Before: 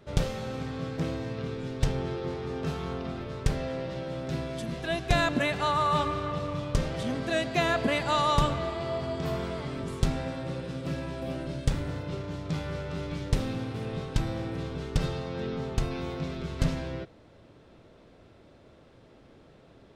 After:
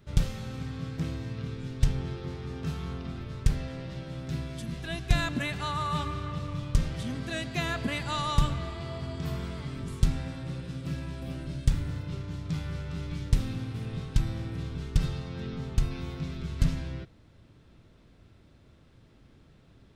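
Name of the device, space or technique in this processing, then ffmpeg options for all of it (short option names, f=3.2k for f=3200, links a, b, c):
smiley-face EQ: -af "lowshelf=f=170:g=7.5,equalizer=f=560:t=o:w=1.6:g=-8.5,highshelf=f=9.3k:g=6,volume=-3dB"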